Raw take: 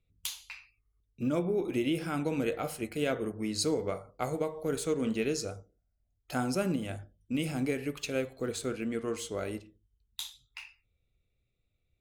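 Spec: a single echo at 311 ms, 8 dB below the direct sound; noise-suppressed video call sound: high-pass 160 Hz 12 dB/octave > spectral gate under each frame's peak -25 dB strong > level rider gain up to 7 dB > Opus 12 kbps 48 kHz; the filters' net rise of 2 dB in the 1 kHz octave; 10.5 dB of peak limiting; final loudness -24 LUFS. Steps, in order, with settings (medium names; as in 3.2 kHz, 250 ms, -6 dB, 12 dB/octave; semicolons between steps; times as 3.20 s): peaking EQ 1 kHz +3 dB; peak limiter -26.5 dBFS; high-pass 160 Hz 12 dB/octave; delay 311 ms -8 dB; spectral gate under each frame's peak -25 dB strong; level rider gain up to 7 dB; trim +13.5 dB; Opus 12 kbps 48 kHz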